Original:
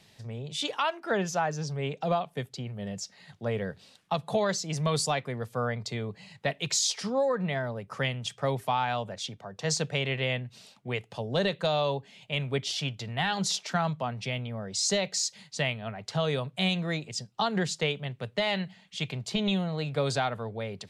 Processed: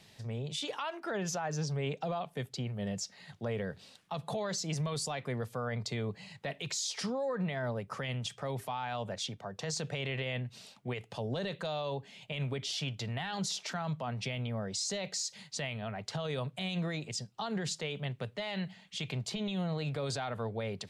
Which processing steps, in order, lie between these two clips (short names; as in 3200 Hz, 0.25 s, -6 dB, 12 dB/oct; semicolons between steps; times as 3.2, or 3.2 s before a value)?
limiter -27 dBFS, peak gain reduction 10.5 dB